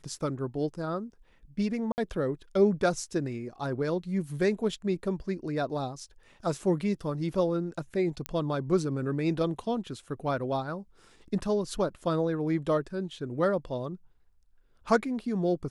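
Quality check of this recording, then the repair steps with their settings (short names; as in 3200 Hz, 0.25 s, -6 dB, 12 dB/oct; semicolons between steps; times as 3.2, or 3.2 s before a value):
1.92–1.98 gap 59 ms
8.26 pop -16 dBFS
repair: de-click; interpolate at 1.92, 59 ms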